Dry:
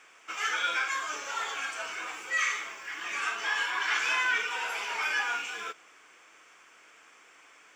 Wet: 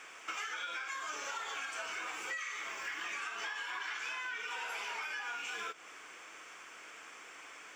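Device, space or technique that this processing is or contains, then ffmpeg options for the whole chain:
serial compression, leveller first: -af "acompressor=threshold=-32dB:ratio=6,acompressor=threshold=-43dB:ratio=6,volume=5dB"

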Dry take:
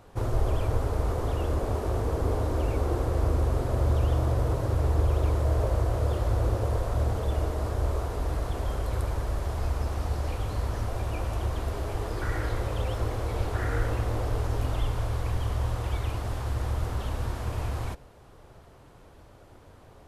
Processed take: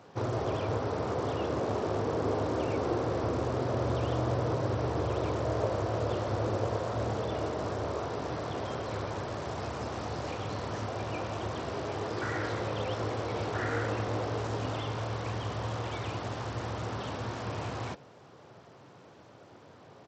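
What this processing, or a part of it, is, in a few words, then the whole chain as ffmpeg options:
Bluetooth headset: -af "highpass=f=120:w=0.5412,highpass=f=120:w=1.3066,aresample=16000,aresample=44100,volume=1dB" -ar 32000 -c:a sbc -b:a 64k

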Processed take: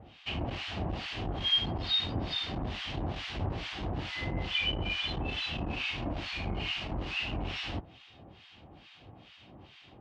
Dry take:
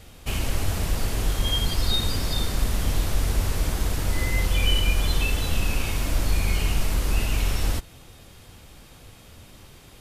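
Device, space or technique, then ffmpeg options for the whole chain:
guitar amplifier with harmonic tremolo: -filter_complex "[0:a]acrossover=split=1200[a][b];[a]aeval=exprs='val(0)*(1-1/2+1/2*cos(2*PI*2.3*n/s))':c=same[c];[b]aeval=exprs='val(0)*(1-1/2-1/2*cos(2*PI*2.3*n/s))':c=same[d];[c][d]amix=inputs=2:normalize=0,asoftclip=type=tanh:threshold=-19dB,highpass=89,equalizer=f=320:t=q:w=4:g=4,equalizer=f=470:t=q:w=4:g=-4,equalizer=f=750:t=q:w=4:g=6,equalizer=f=1.4k:t=q:w=4:g=-4,equalizer=f=2.9k:t=q:w=4:g=6,lowpass=f=4.1k:w=0.5412,lowpass=f=4.1k:w=1.3066"

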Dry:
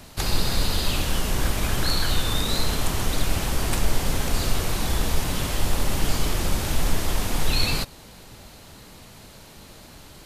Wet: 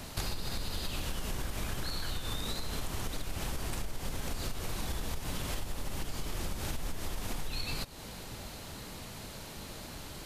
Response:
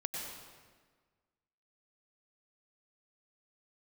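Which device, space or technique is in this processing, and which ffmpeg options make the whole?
serial compression, leveller first: -af "acompressor=threshold=-20dB:ratio=6,acompressor=threshold=-33dB:ratio=6,volume=1dB"

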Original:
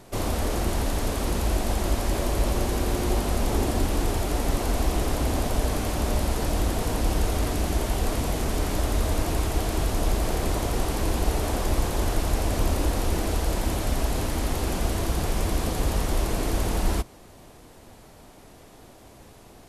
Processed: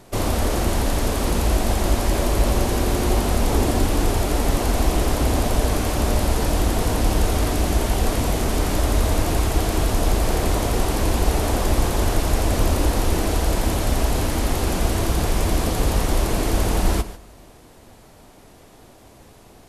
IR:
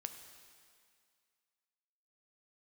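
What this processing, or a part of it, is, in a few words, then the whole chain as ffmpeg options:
keyed gated reverb: -filter_complex "[0:a]asplit=3[a][b][c];[1:a]atrim=start_sample=2205[d];[b][d]afir=irnorm=-1:irlink=0[e];[c]apad=whole_len=868171[f];[e][f]sidechaingate=range=-10dB:threshold=-40dB:ratio=16:detection=peak,volume=3.5dB[g];[a][g]amix=inputs=2:normalize=0,volume=-1dB"

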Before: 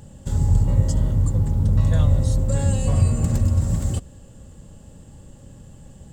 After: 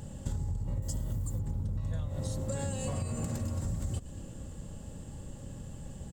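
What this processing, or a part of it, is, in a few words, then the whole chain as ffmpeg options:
serial compression, leveller first: -filter_complex "[0:a]asettb=1/sr,asplit=3[a][b][c];[a]atrim=end=0.824[d];[b]atrim=start=0.82:end=1.39,asetpts=PTS-STARTPTS,afade=t=in:d=0.004:c=qsin,afade=t=out:st=0.566:d=0.004:c=qsin,aemphasis=mode=production:type=50fm[e];[c]atrim=start=1.386[f];[d][e]acrossfade=d=0.004:c1=hsin:c2=qsin[g];[g][f]acrossfade=d=0.004:c1=qsin:c2=hsin,asplit=3[h][i][j];[h]afade=t=out:st=2.07:d=0.02[k];[i]highpass=f=230:p=1,afade=t=in:st=2.07:d=0.02,afade=t=out:st=3.64:d=0.02[l];[j]afade=t=in:st=3.64:d=0.02[m];[k][l][m]amix=inputs=3:normalize=0,asplit=5[n][o][p][q][r];[o]adelay=117,afreqshift=-95,volume=-22.5dB[s];[p]adelay=234,afreqshift=-190,volume=-27.1dB[t];[q]adelay=351,afreqshift=-285,volume=-31.7dB[u];[r]adelay=468,afreqshift=-380,volume=-36.2dB[v];[n][s][t][u][v]amix=inputs=5:normalize=0,acompressor=threshold=-21dB:ratio=6,acompressor=threshold=-31dB:ratio=5"

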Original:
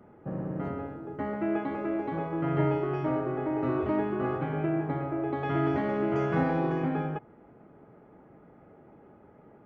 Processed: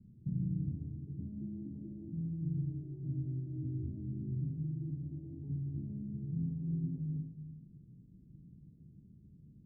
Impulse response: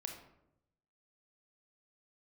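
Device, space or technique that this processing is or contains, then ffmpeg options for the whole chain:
club heard from the street: -filter_complex "[0:a]alimiter=level_in=1.5dB:limit=-24dB:level=0:latency=1:release=270,volume=-1.5dB,lowpass=f=180:w=0.5412,lowpass=f=180:w=1.3066[a];[1:a]atrim=start_sample=2205[b];[a][b]afir=irnorm=-1:irlink=0,volume=7dB"

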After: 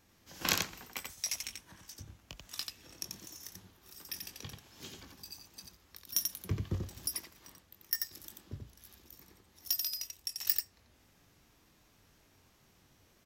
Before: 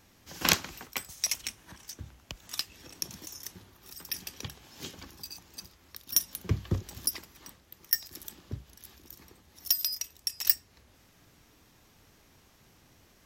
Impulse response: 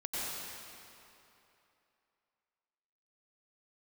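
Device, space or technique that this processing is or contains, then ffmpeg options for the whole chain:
slapback doubling: -filter_complex "[0:a]asplit=3[a][b][c];[b]adelay=21,volume=-8.5dB[d];[c]adelay=88,volume=-4dB[e];[a][d][e]amix=inputs=3:normalize=0,volume=-7dB"

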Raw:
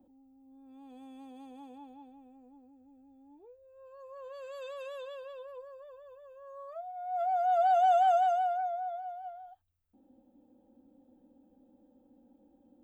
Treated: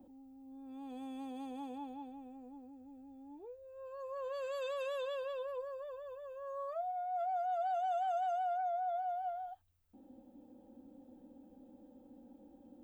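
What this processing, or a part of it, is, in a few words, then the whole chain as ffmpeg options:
compression on the reversed sound: -af "areverse,acompressor=threshold=-40dB:ratio=6,areverse,volume=5dB"

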